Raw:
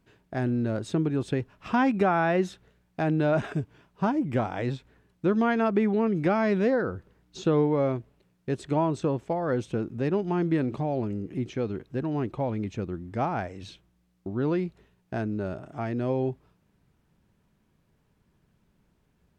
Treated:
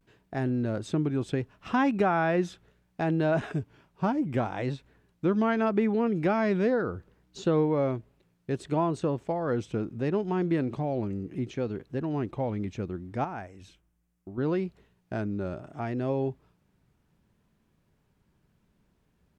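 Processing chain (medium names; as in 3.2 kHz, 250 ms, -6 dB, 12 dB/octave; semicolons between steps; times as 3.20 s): vibrato 0.7 Hz 66 cents; 13.24–14.38 s: ten-band graphic EQ 125 Hz -8 dB, 250 Hz -4 dB, 500 Hz -6 dB, 1 kHz -4 dB, 2 kHz -3 dB, 4 kHz -10 dB; trim -1.5 dB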